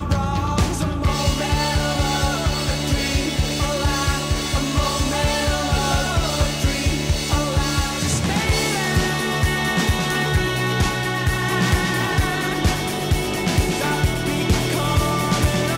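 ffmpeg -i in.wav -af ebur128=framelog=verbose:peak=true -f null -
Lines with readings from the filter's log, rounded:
Integrated loudness:
  I:         -20.4 LUFS
  Threshold: -30.4 LUFS
Loudness range:
  LRA:         0.9 LU
  Threshold: -40.4 LUFS
  LRA low:   -20.8 LUFS
  LRA high:  -19.9 LUFS
True peak:
  Peak:       -8.7 dBFS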